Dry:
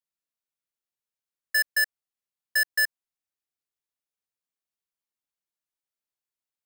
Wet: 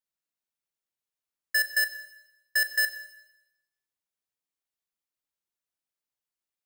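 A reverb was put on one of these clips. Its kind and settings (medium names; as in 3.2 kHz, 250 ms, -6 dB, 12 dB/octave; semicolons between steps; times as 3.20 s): Schroeder reverb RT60 0.93 s, combs from 26 ms, DRR 10 dB; trim -1 dB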